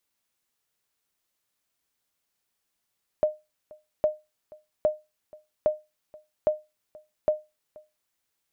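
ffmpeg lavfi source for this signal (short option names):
-f lavfi -i "aevalsrc='0.2*(sin(2*PI*612*mod(t,0.81))*exp(-6.91*mod(t,0.81)/0.23)+0.0596*sin(2*PI*612*max(mod(t,0.81)-0.48,0))*exp(-6.91*max(mod(t,0.81)-0.48,0)/0.23))':d=4.86:s=44100"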